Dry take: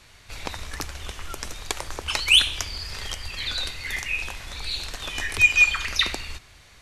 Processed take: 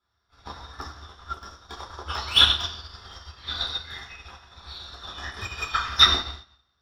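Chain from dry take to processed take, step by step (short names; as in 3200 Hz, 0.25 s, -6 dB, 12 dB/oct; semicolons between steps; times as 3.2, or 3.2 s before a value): bell 5100 Hz +8.5 dB 0.72 oct; soft clip -14 dBFS, distortion -10 dB; reverb RT60 1.1 s, pre-delay 3 ms, DRR -6.5 dB; upward expander 2.5:1, over -28 dBFS; gain -5.5 dB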